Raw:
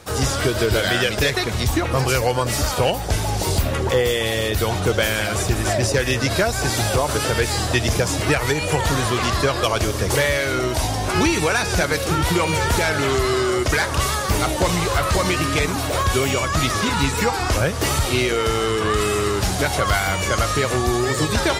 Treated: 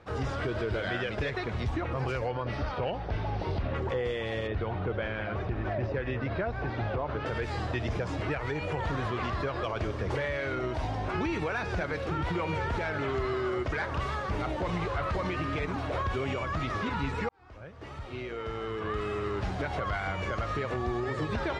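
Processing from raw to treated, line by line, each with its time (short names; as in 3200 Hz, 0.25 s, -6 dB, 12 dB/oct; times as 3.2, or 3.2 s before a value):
2.28–3.76 polynomial smoothing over 15 samples
4.47–7.26 air absorption 250 m
17.29–19.77 fade in
whole clip: LPF 2300 Hz 12 dB/oct; limiter -13.5 dBFS; gain -9 dB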